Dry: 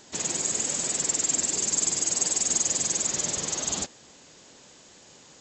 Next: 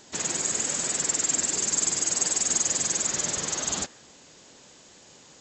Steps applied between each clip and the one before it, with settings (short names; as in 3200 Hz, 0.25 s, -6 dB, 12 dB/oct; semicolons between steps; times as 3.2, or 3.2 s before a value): dynamic EQ 1500 Hz, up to +5 dB, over -54 dBFS, Q 1.4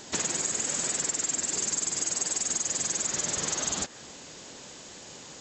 compressor 6:1, threshold -33 dBFS, peak gain reduction 12.5 dB; gain +6.5 dB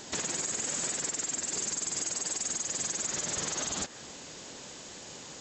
limiter -22.5 dBFS, peak gain reduction 7 dB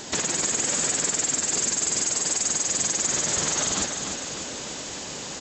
reverse; upward compressor, threshold -38 dBFS; reverse; feedback echo 0.299 s, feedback 58%, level -7 dB; gain +7.5 dB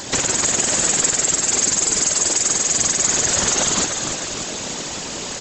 whisperiser; gain +6.5 dB